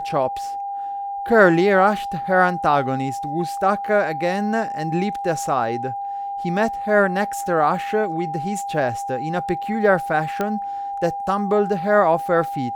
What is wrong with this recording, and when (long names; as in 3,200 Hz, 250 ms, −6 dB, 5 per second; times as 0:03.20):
whistle 800 Hz −25 dBFS
0:10.41: click −10 dBFS